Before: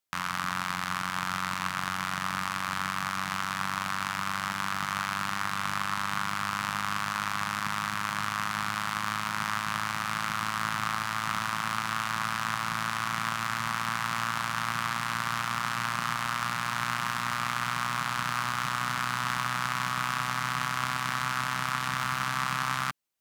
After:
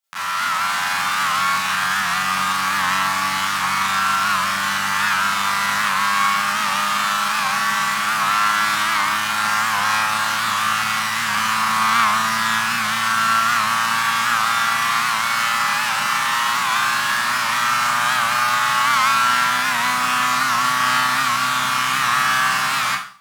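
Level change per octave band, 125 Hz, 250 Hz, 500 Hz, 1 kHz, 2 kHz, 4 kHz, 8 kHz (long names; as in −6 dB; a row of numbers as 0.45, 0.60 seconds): +1.0, +5.5, +9.5, +12.0, +12.5, +13.0, +13.5 decibels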